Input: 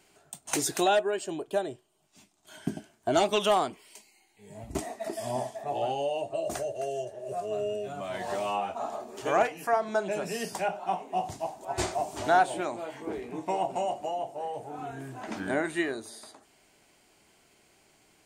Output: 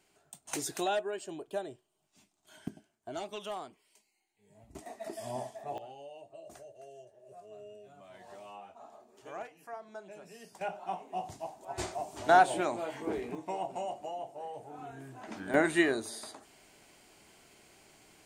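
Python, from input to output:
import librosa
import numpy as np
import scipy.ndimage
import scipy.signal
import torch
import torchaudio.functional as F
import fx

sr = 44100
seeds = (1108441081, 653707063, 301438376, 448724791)

y = fx.gain(x, sr, db=fx.steps((0.0, -7.5), (2.68, -15.5), (4.86, -6.5), (5.78, -18.0), (10.61, -7.0), (12.29, 0.5), (13.35, -7.0), (15.54, 3.0)))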